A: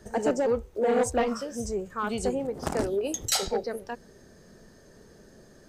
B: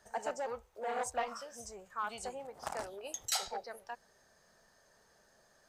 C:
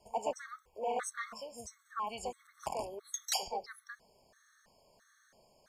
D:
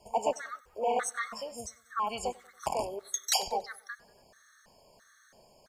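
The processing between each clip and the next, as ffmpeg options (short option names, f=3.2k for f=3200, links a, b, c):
-af "lowshelf=f=520:t=q:w=1.5:g=-13,volume=-8dB"
-af "afftfilt=real='re*gt(sin(2*PI*1.5*pts/sr)*(1-2*mod(floor(b*sr/1024/1100),2)),0)':imag='im*gt(sin(2*PI*1.5*pts/sr)*(1-2*mod(floor(b*sr/1024/1100),2)),0)':win_size=1024:overlap=0.75,volume=3dB"
-af "aecho=1:1:94|188|282:0.0668|0.0327|0.016,volume=6dB"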